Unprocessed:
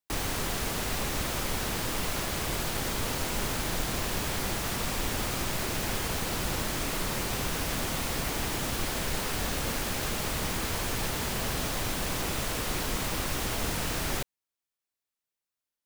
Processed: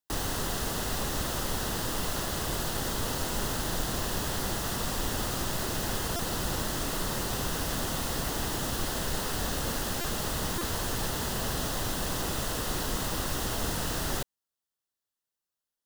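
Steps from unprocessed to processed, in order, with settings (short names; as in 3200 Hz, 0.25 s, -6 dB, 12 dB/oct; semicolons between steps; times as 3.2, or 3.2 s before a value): bell 2300 Hz -14.5 dB 0.21 oct; stuck buffer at 6.16/10.01/10.58, samples 128, times 10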